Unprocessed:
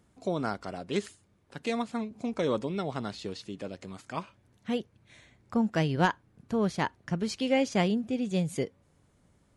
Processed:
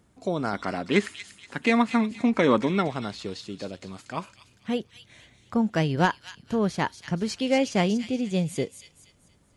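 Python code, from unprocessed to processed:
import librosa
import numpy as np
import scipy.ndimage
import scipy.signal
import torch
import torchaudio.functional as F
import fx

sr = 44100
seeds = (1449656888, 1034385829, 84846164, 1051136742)

y = fx.graphic_eq_10(x, sr, hz=(250, 1000, 2000), db=(8, 6, 11), at=(0.53, 2.88))
y = fx.echo_wet_highpass(y, sr, ms=237, feedback_pct=37, hz=3300.0, wet_db=-5.0)
y = F.gain(torch.from_numpy(y), 3.0).numpy()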